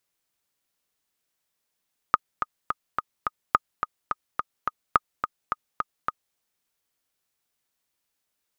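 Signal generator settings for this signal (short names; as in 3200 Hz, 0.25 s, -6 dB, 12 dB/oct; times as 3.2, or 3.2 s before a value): metronome 213 bpm, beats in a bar 5, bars 3, 1240 Hz, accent 8 dB -3.5 dBFS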